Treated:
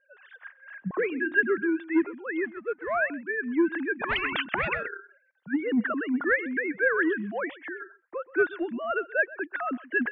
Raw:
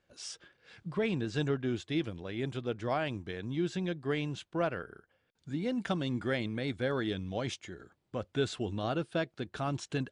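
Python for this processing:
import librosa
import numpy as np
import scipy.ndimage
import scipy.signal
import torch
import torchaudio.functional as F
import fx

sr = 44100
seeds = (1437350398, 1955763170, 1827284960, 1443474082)

y = fx.sine_speech(x, sr)
y = fx.tilt_eq(y, sr, slope=2.0)
y = 10.0 ** (-24.0 / 20.0) * np.tanh(y / 10.0 ** (-24.0 / 20.0))
y = fx.hum_notches(y, sr, base_hz=50, count=7, at=(0.93, 1.58))
y = fx.power_curve(y, sr, exponent=1.4, at=(2.44, 2.95))
y = fx.lowpass_res(y, sr, hz=1700.0, q=4.5)
y = fx.low_shelf(y, sr, hz=290.0, db=10.0)
y = y + 10.0 ** (-19.5 / 20.0) * np.pad(y, (int(129 * sr / 1000.0), 0))[:len(y)]
y = fx.spectral_comp(y, sr, ratio=10.0, at=(3.99, 4.87), fade=0.02)
y = y * 10.0 ** (4.0 / 20.0)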